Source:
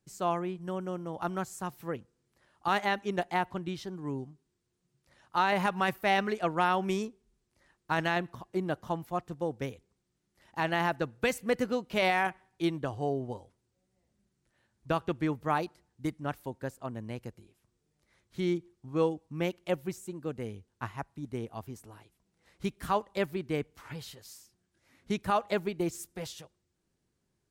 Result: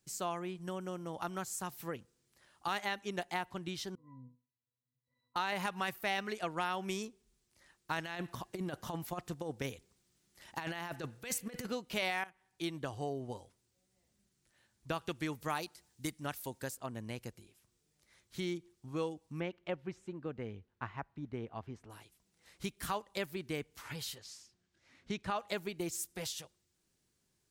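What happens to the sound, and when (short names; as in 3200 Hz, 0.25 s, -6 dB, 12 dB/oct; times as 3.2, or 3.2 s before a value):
3.95–5.36 octave resonator B, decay 0.35 s
8.05–11.67 negative-ratio compressor -33 dBFS, ratio -0.5
12.24–12.79 fade in, from -18 dB
15.01–16.75 high shelf 3100 Hz +8 dB
19.4–21.9 LPF 2200 Hz
24.18–25.39 air absorption 95 m
whole clip: high shelf 2100 Hz +10.5 dB; compressor 2:1, threshold -35 dBFS; gain -3 dB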